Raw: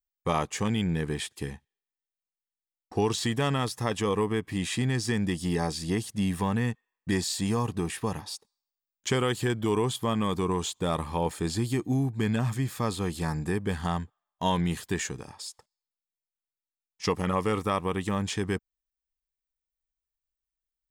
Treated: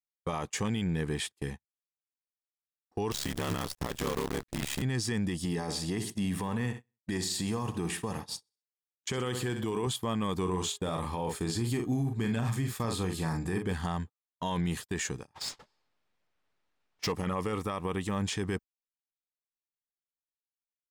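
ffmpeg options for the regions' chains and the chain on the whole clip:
-filter_complex "[0:a]asettb=1/sr,asplit=3[s0][s1][s2];[s0]atrim=end=3.114[s3];[s1]atrim=start=3.11:end=4.82,asetpts=PTS-STARTPTS,afade=t=in:d=0.004:c=qsin,afade=t=out:st=1.706:d=0.004:c=qsin,aeval=exprs='val(0)*sin(2*PI*35*n/s)':c=same,acrusher=bits=6:dc=4:mix=0:aa=0.000001[s4];[s2]atrim=start=4.816[s5];[s3][s4]acrossfade=d=0.004:c1=hsin:c2=qsin[s6];[s6][s5]acrossfade=d=0.004:c1=qsin:c2=hsin,asettb=1/sr,asplit=3[s7][s8][s9];[s7]atrim=end=5.454[s10];[s8]atrim=start=5.45:end=9.87,asetpts=PTS-STARTPTS,afade=t=in:d=0.004:c=qsin,afade=t=out:st=4.416:d=0.004:c=qsin,highpass=81,aecho=1:1:64|128|192|256:0.237|0.107|0.048|0.0216,atrim=end_sample=194922[s11];[s9]atrim=start=9.866[s12];[s10][s11]acrossfade=d=0.004:c1=hsin:c2=qsin[s13];[s13][s12]acrossfade=d=0.004:c1=qsin:c2=hsin,asettb=1/sr,asplit=3[s14][s15][s16];[s14]atrim=end=10.414[s17];[s15]atrim=start=10.41:end=13.73,asetpts=PTS-STARTPTS,afade=t=in:d=0.004:c=qsin,afade=t=out:st=3.316:d=0.004:c=qsin,asplit=2[s18][s19];[s19]adelay=43,volume=0.447[s20];[s18][s20]amix=inputs=2:normalize=0,atrim=end_sample=146412,bandreject=f=412.6:t=h:w=4,bandreject=f=825.2:t=h:w=4,bandreject=f=1237.8:t=h:w=4,bandreject=f=1650.4:t=h:w=4,bandreject=f=2063:t=h:w=4,bandreject=f=2475.6:t=h:w=4,bandreject=f=2888.2:t=h:w=4,bandreject=f=3300.8:t=h:w=4,bandreject=f=3713.4:t=h:w=4[s21];[s16]atrim=start=13.726[s22];[s17][s21]acrossfade=d=0.004:c1=hsin:c2=qsin[s23];[s23][s22]acrossfade=d=0.004:c1=qsin:c2=hsin,asettb=1/sr,asplit=3[s24][s25][s26];[s24]atrim=end=15.344[s27];[s25]atrim=start=15.34:end=17.12,asetpts=PTS-STARTPTS,afade=t=in:d=0.004:c=qsin,afade=t=out:st=1.776:d=0.004:c=qsin,aeval=exprs='val(0)+0.5*0.0355*sgn(val(0))':c=same,agate=range=0.0224:threshold=0.02:ratio=3:release=100:detection=peak,adynamicsmooth=sensitivity=6.5:basefreq=2500[s28];[s26]atrim=start=17.116[s29];[s27][s28]acrossfade=d=0.004:c1=hsin:c2=qsin[s30];[s30][s29]acrossfade=d=0.004:c1=qsin:c2=hsin,alimiter=limit=0.0708:level=0:latency=1:release=37,agate=range=0.0447:threshold=0.0126:ratio=16:detection=peak"

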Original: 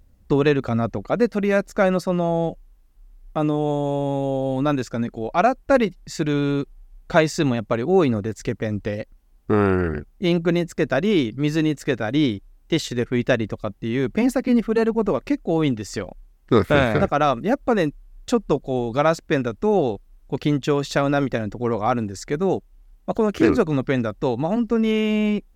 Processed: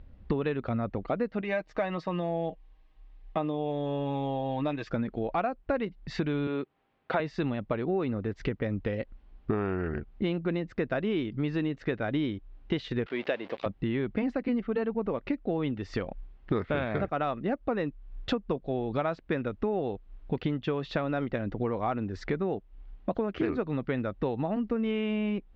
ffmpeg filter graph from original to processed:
-filter_complex "[0:a]asettb=1/sr,asplit=3[s0][s1][s2];[s0]atrim=end=1.414[s3];[s1]atrim=start=1.41:end=4.9,asetpts=PTS-STARTPTS,afade=t=in:d=0.004:c=qsin,afade=t=out:st=3.486:d=0.004:c=qsin,lowshelf=f=490:g=-10,bandreject=f=1400:w=5.4,aecho=1:1:6.4:0.53,atrim=end_sample=153909[s4];[s2]atrim=start=4.896[s5];[s3][s4]acrossfade=d=0.004:c1=hsin:c2=qsin[s6];[s6][s5]acrossfade=d=0.004:c1=qsin:c2=hsin,asettb=1/sr,asplit=3[s7][s8][s9];[s7]atrim=end=6.474[s10];[s8]atrim=start=6.47:end=7.2,asetpts=PTS-STARTPTS,afade=t=in:d=0.004:c=qsin,afade=t=out:st=0.726:d=0.004:c=qsin,highpass=f=96:w=0.5412,highpass=f=96:w=1.3066,bass=f=250:g=-11,treble=f=4000:g=-6[s11];[s9]atrim=start=7.196[s12];[s10][s11]acrossfade=d=0.004:c1=hsin:c2=qsin[s13];[s13][s12]acrossfade=d=0.004:c1=qsin:c2=hsin,asettb=1/sr,asplit=3[s14][s15][s16];[s14]atrim=end=13.064[s17];[s15]atrim=start=13.06:end=13.66,asetpts=PTS-STARTPTS,afade=t=in:d=0.004:c=qsin,afade=t=out:st=0.596:d=0.004:c=qsin,aeval=exprs='val(0)+0.5*0.0282*sgn(val(0))':c=same,highpass=480,lowpass=5900,equalizer=f=1300:w=1.5:g=-6[s18];[s16]atrim=start=13.656[s19];[s17][s18]acrossfade=d=0.004:c1=hsin:c2=qsin[s20];[s20][s19]acrossfade=d=0.004:c1=qsin:c2=hsin,lowpass=f=3500:w=0.5412,lowpass=f=3500:w=1.3066,acompressor=threshold=0.0251:ratio=5,volume=1.58"

